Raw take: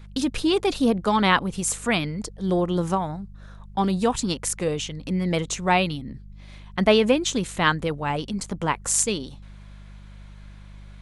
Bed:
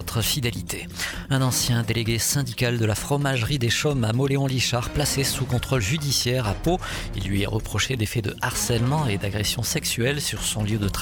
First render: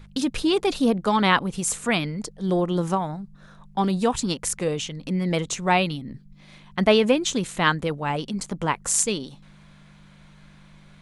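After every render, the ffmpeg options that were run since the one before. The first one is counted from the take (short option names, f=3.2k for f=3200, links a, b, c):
-af "bandreject=f=50:t=h:w=4,bandreject=f=100:t=h:w=4"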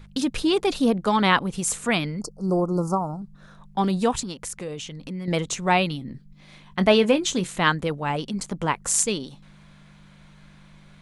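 -filter_complex "[0:a]asettb=1/sr,asplit=3[a][b][c];[a]atrim=end=2.214[d];[b]atrim=start=2.21:end=3.22,asetpts=PTS-STARTPTS,afade=t=in:d=0.004:c=qsin,afade=t=out:st=1.006:d=0.004:c=qsin,asuperstop=centerf=2500:order=20:qfactor=0.83[e];[c]atrim=start=3.216[f];[d][e]acrossfade=d=0.004:c1=hsin:c2=qsin[g];[g][f]acrossfade=d=0.004:c1=qsin:c2=hsin,asettb=1/sr,asplit=3[h][i][j];[h]atrim=end=4.234[k];[i]atrim=start=4.23:end=5.28,asetpts=PTS-STARTPTS,afade=t=in:d=0.004:c=qsin,afade=t=out:st=1.046:d=0.004:c=qsin,acompressor=threshold=-35dB:ratio=2:attack=3.2:release=140:knee=1:detection=peak[l];[j]atrim=start=5.276[m];[k][l]acrossfade=d=0.004:c1=hsin:c2=qsin[n];[n][m]acrossfade=d=0.004:c1=qsin:c2=hsin,asettb=1/sr,asplit=3[o][p][q];[o]atrim=end=5.994[r];[p]atrim=start=5.99:end=7.49,asetpts=PTS-STARTPTS,afade=t=in:d=0.004:c=qsin,afade=t=out:st=1.496:d=0.004:c=qsin,asplit=2[s][t];[t]adelay=22,volume=-12dB[u];[s][u]amix=inputs=2:normalize=0,atrim=end_sample=66150[v];[q]atrim=start=7.486[w];[r][v]acrossfade=d=0.004:c1=hsin:c2=qsin[x];[x][w]acrossfade=d=0.004:c1=qsin:c2=hsin"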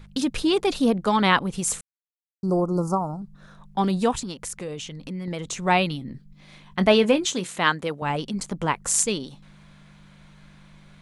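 -filter_complex "[0:a]asettb=1/sr,asplit=3[a][b][c];[a]atrim=end=4.144[d];[b]atrim=start=4.14:end=5.65,asetpts=PTS-STARTPTS,afade=t=in:d=0.004:c=qsin,afade=t=out:st=1.506:d=0.004:c=qsin,acompressor=threshold=-26dB:ratio=6:attack=3.2:release=140:knee=1:detection=peak[e];[c]atrim=start=5.646[f];[d][e]acrossfade=d=0.004:c1=hsin:c2=qsin[g];[g][f]acrossfade=d=0.004:c1=qsin:c2=hsin,asettb=1/sr,asplit=3[h][i][j];[h]atrim=end=7.254[k];[i]atrim=start=7.25:end=8.02,asetpts=PTS-STARTPTS,afade=t=in:d=0.004:c=qsin,afade=t=out:st=0.766:d=0.004:c=qsin,highpass=f=280:p=1[l];[j]atrim=start=8.016[m];[k][l]acrossfade=d=0.004:c1=hsin:c2=qsin[n];[n][m]acrossfade=d=0.004:c1=qsin:c2=hsin,asplit=3[o][p][q];[o]atrim=end=1.81,asetpts=PTS-STARTPTS,afade=t=out:st=1.806:d=0.004:c=hsin[r];[p]atrim=start=1.81:end=2.43,asetpts=PTS-STARTPTS,volume=0[s];[q]atrim=start=2.43,asetpts=PTS-STARTPTS,afade=t=in:d=0.004:c=hsin[t];[r][s][t]concat=n=3:v=0:a=1"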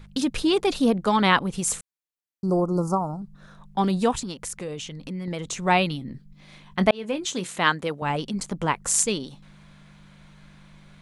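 -filter_complex "[0:a]asplit=2[a][b];[a]atrim=end=6.91,asetpts=PTS-STARTPTS,afade=t=out:st=6.906:d=0.004:c=hsin[c];[b]atrim=start=6.91,asetpts=PTS-STARTPTS,afade=t=in:d=0.56[d];[c][d]concat=n=2:v=0:a=1"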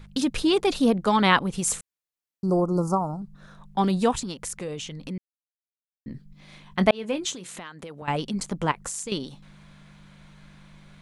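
-filter_complex "[0:a]asettb=1/sr,asplit=3[a][b][c];[a]atrim=end=7.334[d];[b]atrim=start=7.33:end=8.08,asetpts=PTS-STARTPTS,afade=t=in:d=0.004:c=qsin,afade=t=out:st=0.746:d=0.004:c=qsin,acompressor=threshold=-35dB:ratio=12:attack=3.2:release=140:knee=1:detection=peak[e];[c]atrim=start=8.076[f];[d][e]acrossfade=d=0.004:c1=hsin:c2=qsin[g];[g][f]acrossfade=d=0.004:c1=qsin:c2=hsin,asettb=1/sr,asplit=3[h][i][j];[h]atrim=end=8.714[k];[i]atrim=start=8.71:end=9.12,asetpts=PTS-STARTPTS,afade=t=in:d=0.004:c=qsin,afade=t=out:st=0.406:d=0.004:c=qsin,acompressor=threshold=-29dB:ratio=12:attack=3.2:release=140:knee=1:detection=peak[l];[j]atrim=start=9.116[m];[k][l]acrossfade=d=0.004:c1=hsin:c2=qsin[n];[n][m]acrossfade=d=0.004:c1=qsin:c2=hsin,asplit=3[o][p][q];[o]atrim=end=5.18,asetpts=PTS-STARTPTS,afade=t=out:st=5.176:d=0.004:c=hsin[r];[p]atrim=start=5.18:end=6.06,asetpts=PTS-STARTPTS,volume=0[s];[q]atrim=start=6.06,asetpts=PTS-STARTPTS,afade=t=in:d=0.004:c=hsin[t];[r][s][t]concat=n=3:v=0:a=1"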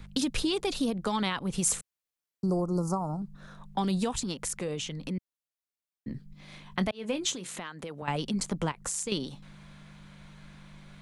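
-filter_complex "[0:a]alimiter=limit=-14dB:level=0:latency=1:release=191,acrossover=split=140|3000[a][b][c];[b]acompressor=threshold=-28dB:ratio=4[d];[a][d][c]amix=inputs=3:normalize=0"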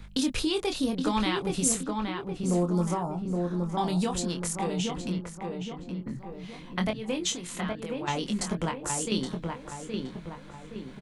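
-filter_complex "[0:a]asplit=2[a][b];[b]adelay=23,volume=-5.5dB[c];[a][c]amix=inputs=2:normalize=0,asplit=2[d][e];[e]adelay=820,lowpass=f=2k:p=1,volume=-3.5dB,asplit=2[f][g];[g]adelay=820,lowpass=f=2k:p=1,volume=0.49,asplit=2[h][i];[i]adelay=820,lowpass=f=2k:p=1,volume=0.49,asplit=2[j][k];[k]adelay=820,lowpass=f=2k:p=1,volume=0.49,asplit=2[l][m];[m]adelay=820,lowpass=f=2k:p=1,volume=0.49,asplit=2[n][o];[o]adelay=820,lowpass=f=2k:p=1,volume=0.49[p];[d][f][h][j][l][n][p]amix=inputs=7:normalize=0"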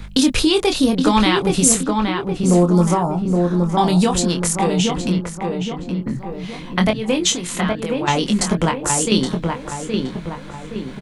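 -af "volume=12dB,alimiter=limit=-1dB:level=0:latency=1"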